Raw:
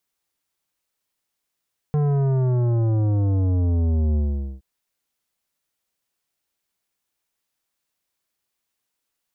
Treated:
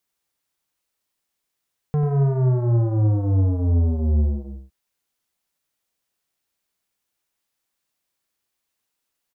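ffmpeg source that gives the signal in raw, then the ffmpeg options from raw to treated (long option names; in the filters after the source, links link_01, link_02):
-f lavfi -i "aevalsrc='0.119*clip((2.67-t)/0.45,0,1)*tanh(3.98*sin(2*PI*150*2.67/log(65/150)*(exp(log(65/150)*t/2.67)-1)))/tanh(3.98)':duration=2.67:sample_rate=44100"
-filter_complex "[0:a]asplit=2[link_01][link_02];[link_02]adelay=93.29,volume=-7dB,highshelf=frequency=4000:gain=-2.1[link_03];[link_01][link_03]amix=inputs=2:normalize=0"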